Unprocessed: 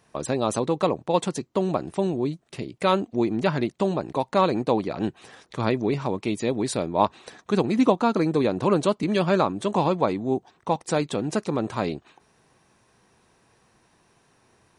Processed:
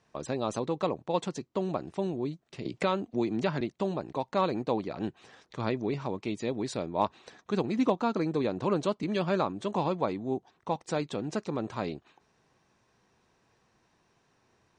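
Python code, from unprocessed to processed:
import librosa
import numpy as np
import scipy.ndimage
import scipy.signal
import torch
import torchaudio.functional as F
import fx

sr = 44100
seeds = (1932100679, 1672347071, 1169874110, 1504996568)

y = scipy.signal.sosfilt(scipy.signal.butter(4, 7300.0, 'lowpass', fs=sr, output='sos'), x)
y = np.clip(y, -10.0 ** (-6.5 / 20.0), 10.0 ** (-6.5 / 20.0))
y = fx.band_squash(y, sr, depth_pct=70, at=(2.65, 3.61))
y = y * 10.0 ** (-7.0 / 20.0)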